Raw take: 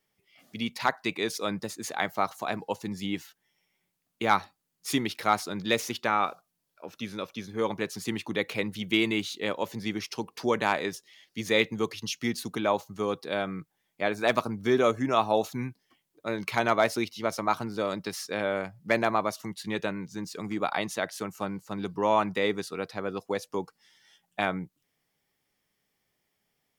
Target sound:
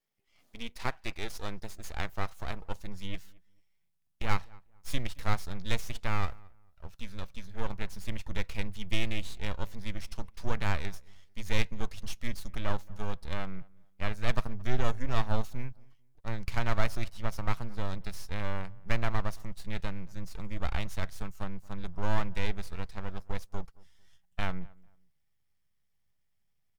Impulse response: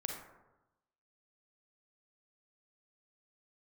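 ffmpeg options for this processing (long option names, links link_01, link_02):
-filter_complex "[0:a]aeval=exprs='max(val(0),0)':channel_layout=same,asubboost=boost=8:cutoff=110,asplit=2[link_01][link_02];[link_02]adelay=223,lowpass=frequency=1700:poles=1,volume=-24dB,asplit=2[link_03][link_04];[link_04]adelay=223,lowpass=frequency=1700:poles=1,volume=0.27[link_05];[link_01][link_03][link_05]amix=inputs=3:normalize=0,volume=-5.5dB"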